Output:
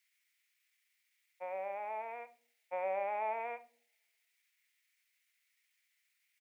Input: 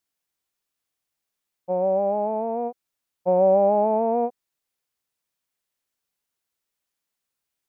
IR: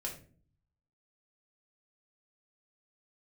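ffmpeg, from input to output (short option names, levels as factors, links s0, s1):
-filter_complex "[0:a]atempo=1.2,highpass=f=2100:t=q:w=5.8,asplit=2[s0][s1];[1:a]atrim=start_sample=2205[s2];[s1][s2]afir=irnorm=-1:irlink=0,volume=0.473[s3];[s0][s3]amix=inputs=2:normalize=0"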